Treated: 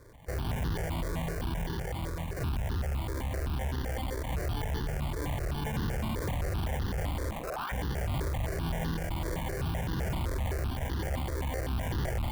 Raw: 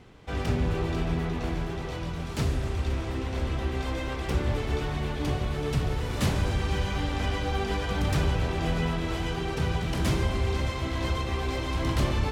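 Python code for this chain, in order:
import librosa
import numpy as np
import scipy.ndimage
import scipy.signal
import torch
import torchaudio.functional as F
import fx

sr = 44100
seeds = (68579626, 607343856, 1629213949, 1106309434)

y = fx.peak_eq(x, sr, hz=220.0, db=13.5, octaves=0.62, at=(5.65, 6.15))
y = fx.tube_stage(y, sr, drive_db=34.0, bias=0.8)
y = fx.sample_hold(y, sr, seeds[0], rate_hz=1300.0, jitter_pct=0)
y = fx.ring_mod(y, sr, carrier_hz=fx.line((7.3, 240.0), (7.71, 1500.0)), at=(7.3, 7.71), fade=0.02)
y = fx.phaser_held(y, sr, hz=7.8, low_hz=770.0, high_hz=2300.0)
y = y * librosa.db_to_amplitude(6.5)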